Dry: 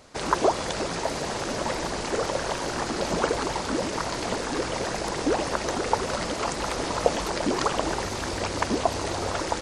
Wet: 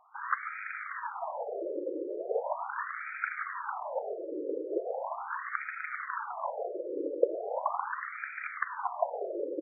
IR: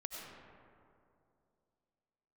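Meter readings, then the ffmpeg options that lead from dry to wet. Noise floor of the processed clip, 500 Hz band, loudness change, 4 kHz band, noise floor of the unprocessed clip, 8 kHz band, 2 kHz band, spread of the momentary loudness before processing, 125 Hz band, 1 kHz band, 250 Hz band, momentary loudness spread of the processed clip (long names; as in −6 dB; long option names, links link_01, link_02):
−43 dBFS, −7.0 dB, −8.0 dB, below −40 dB, −32 dBFS, below −40 dB, −4.5 dB, 4 LU, below −40 dB, −7.0 dB, −13.0 dB, 4 LU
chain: -filter_complex "[0:a]acrossover=split=720[link_01][link_02];[link_01]adelay=170[link_03];[link_03][link_02]amix=inputs=2:normalize=0,asplit=2[link_04][link_05];[1:a]atrim=start_sample=2205,adelay=104[link_06];[link_05][link_06]afir=irnorm=-1:irlink=0,volume=-15.5dB[link_07];[link_04][link_07]amix=inputs=2:normalize=0,afftfilt=real='re*between(b*sr/1024,400*pow(1800/400,0.5+0.5*sin(2*PI*0.39*pts/sr))/1.41,400*pow(1800/400,0.5+0.5*sin(2*PI*0.39*pts/sr))*1.41)':imag='im*between(b*sr/1024,400*pow(1800/400,0.5+0.5*sin(2*PI*0.39*pts/sr))/1.41,400*pow(1800/400,0.5+0.5*sin(2*PI*0.39*pts/sr))*1.41)':win_size=1024:overlap=0.75"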